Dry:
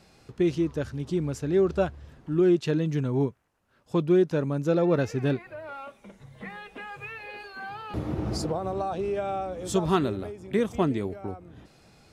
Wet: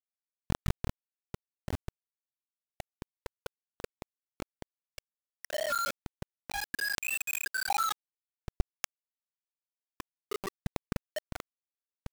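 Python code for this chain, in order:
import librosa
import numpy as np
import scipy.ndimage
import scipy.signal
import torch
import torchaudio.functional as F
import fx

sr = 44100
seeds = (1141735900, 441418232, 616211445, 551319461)

y = (np.mod(10.0 ** (28.5 / 20.0) * x + 1.0, 2.0) - 1.0) / 10.0 ** (28.5 / 20.0)
y = fx.echo_tape(y, sr, ms=190, feedback_pct=43, wet_db=-10, lp_hz=2200.0, drive_db=30.0, wow_cents=23)
y = fx.over_compress(y, sr, threshold_db=-39.0, ratio=-0.5)
y = fx.high_shelf(y, sr, hz=2600.0, db=7.0)
y = fx.spec_topn(y, sr, count=2)
y = fx.dynamic_eq(y, sr, hz=1200.0, q=2.0, threshold_db=-58.0, ratio=4.0, max_db=4)
y = fx.lpc_monotone(y, sr, seeds[0], pitch_hz=280.0, order=16)
y = fx.quant_dither(y, sr, seeds[1], bits=6, dither='none')
y = 10.0 ** (-17.5 / 20.0) * np.tanh(y / 10.0 ** (-17.5 / 20.0))
y = fx.sustainer(y, sr, db_per_s=41.0)
y = y * 10.0 ** (2.0 / 20.0)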